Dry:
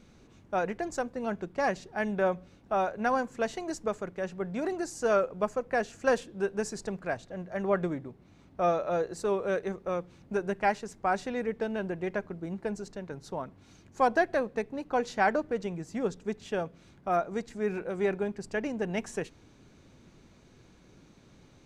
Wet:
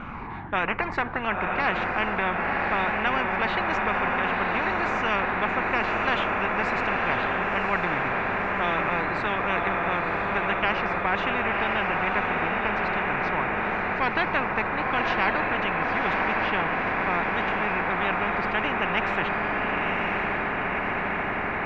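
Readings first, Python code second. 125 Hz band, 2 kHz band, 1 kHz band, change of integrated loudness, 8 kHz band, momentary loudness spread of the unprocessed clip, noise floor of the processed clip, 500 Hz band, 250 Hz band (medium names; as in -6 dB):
+6.0 dB, +13.5 dB, +8.5 dB, +6.5 dB, under -10 dB, 10 LU, -29 dBFS, +0.5 dB, +3.0 dB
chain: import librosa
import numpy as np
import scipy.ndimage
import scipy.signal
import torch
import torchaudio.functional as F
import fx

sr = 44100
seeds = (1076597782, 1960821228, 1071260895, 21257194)

y = fx.spec_ripple(x, sr, per_octave=0.87, drift_hz=-1.6, depth_db=7)
y = scipy.signal.sosfilt(scipy.signal.butter(4, 2100.0, 'lowpass', fs=sr, output='sos'), y)
y = fx.low_shelf_res(y, sr, hz=670.0, db=-8.5, q=3.0)
y = fx.echo_diffused(y, sr, ms=1032, feedback_pct=60, wet_db=-5.5)
y = fx.spectral_comp(y, sr, ratio=4.0)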